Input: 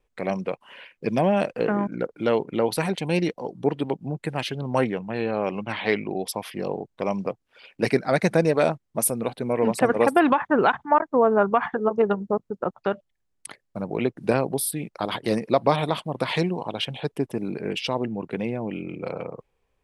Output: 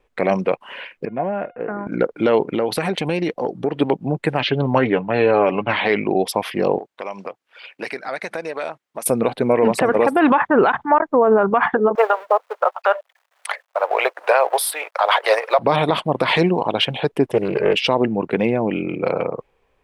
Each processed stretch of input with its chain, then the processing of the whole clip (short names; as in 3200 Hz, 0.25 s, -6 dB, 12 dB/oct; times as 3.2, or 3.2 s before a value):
1.05–1.87 LPF 2100 Hz 24 dB/oct + resonator 710 Hz, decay 0.34 s, mix 80%
2.45–3.81 notch 960 Hz + compressor 5:1, threshold -26 dBFS
4.39–5.73 LPF 4500 Hz 24 dB/oct + comb 7 ms, depth 44%
6.78–9.06 HPF 1100 Hz 6 dB/oct + compressor 3:1, threshold -37 dBFS
11.95–15.59 G.711 law mismatch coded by mu + steep high-pass 540 Hz + bell 1100 Hz +6.5 dB 2.8 oct
17.32–17.75 comb 2 ms, depth 80% + Doppler distortion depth 0.27 ms
whole clip: tone controls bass -6 dB, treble -9 dB; maximiser +16 dB; gain -4.5 dB